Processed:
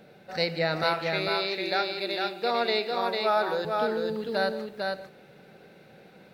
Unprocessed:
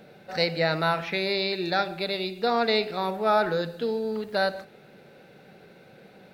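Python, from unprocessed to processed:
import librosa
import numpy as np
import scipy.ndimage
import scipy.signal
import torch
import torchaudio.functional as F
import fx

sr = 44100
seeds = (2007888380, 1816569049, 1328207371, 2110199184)

y = fx.highpass(x, sr, hz=300.0, slope=12, at=(0.83, 3.65))
y = fx.echo_multitap(y, sr, ms=(165, 450), db=(-17.0, -3.5))
y = y * 10.0 ** (-2.5 / 20.0)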